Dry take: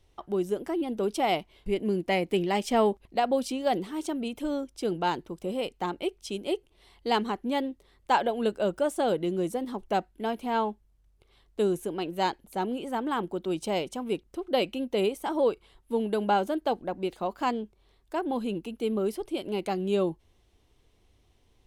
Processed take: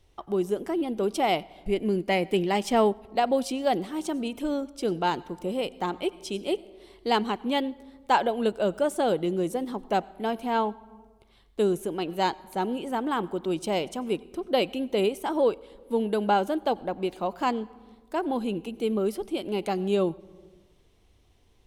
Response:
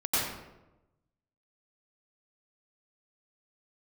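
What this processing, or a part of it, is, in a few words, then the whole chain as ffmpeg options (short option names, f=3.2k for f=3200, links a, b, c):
compressed reverb return: -filter_complex "[0:a]asplit=2[a][b];[1:a]atrim=start_sample=2205[c];[b][c]afir=irnorm=-1:irlink=0,acompressor=threshold=-22dB:ratio=6,volume=-24dB[d];[a][d]amix=inputs=2:normalize=0,asettb=1/sr,asplit=3[e][f][g];[e]atrim=end=7.294[h];[f]atrim=start=7.29:end=7.7,asetpts=PTS-STARTPTS,afade=t=in:d=0.004:c=qsin,afade=t=out:st=0.406:d=0.004:c=qsin,equalizer=f=3k:t=o:w=0.77:g=5.5[i];[g]atrim=start=7.696[j];[h][i]acrossfade=d=0.004:c1=hsin:c2=qsin[k];[k][j]acrossfade=d=0.004:c1=qsin:c2=hsin,volume=1.5dB"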